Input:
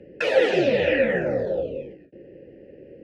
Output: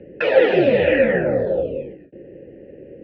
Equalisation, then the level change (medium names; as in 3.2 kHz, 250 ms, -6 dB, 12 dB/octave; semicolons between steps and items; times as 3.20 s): low-pass 4.3 kHz 12 dB/octave; distance through air 220 m; +5.5 dB